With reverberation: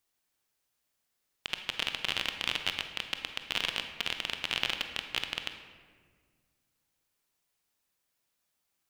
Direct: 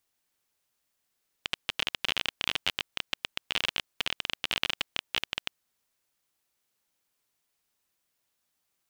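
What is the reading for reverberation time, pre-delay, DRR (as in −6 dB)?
1.7 s, 23 ms, 6.0 dB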